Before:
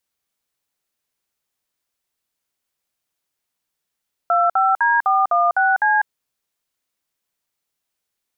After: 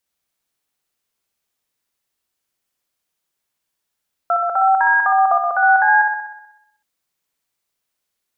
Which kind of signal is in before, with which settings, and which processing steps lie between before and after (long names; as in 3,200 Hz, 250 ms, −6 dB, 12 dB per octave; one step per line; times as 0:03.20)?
touch tones "25D416C", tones 198 ms, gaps 55 ms, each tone −16 dBFS
flutter between parallel walls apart 10.7 metres, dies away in 0.85 s